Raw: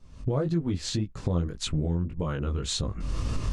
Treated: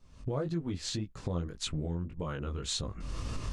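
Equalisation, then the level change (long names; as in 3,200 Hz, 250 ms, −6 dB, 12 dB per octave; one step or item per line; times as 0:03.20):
low-shelf EQ 410 Hz −4.5 dB
−3.5 dB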